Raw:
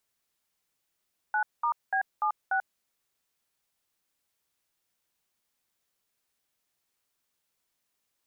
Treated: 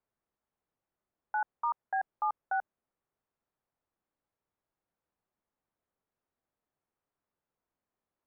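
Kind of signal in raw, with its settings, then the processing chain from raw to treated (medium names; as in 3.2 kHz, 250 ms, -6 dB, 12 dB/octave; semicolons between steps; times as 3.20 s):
DTMF "9*B76", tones 89 ms, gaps 204 ms, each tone -26.5 dBFS
low-pass 1.1 kHz 12 dB/octave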